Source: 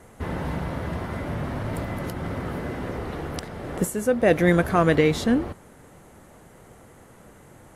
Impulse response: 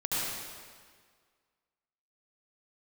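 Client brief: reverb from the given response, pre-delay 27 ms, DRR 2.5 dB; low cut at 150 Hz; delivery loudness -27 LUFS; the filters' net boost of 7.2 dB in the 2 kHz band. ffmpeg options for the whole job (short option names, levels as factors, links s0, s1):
-filter_complex "[0:a]highpass=150,equalizer=f=2000:t=o:g=8.5,asplit=2[s0][s1];[1:a]atrim=start_sample=2205,adelay=27[s2];[s1][s2]afir=irnorm=-1:irlink=0,volume=0.282[s3];[s0][s3]amix=inputs=2:normalize=0,volume=0.562"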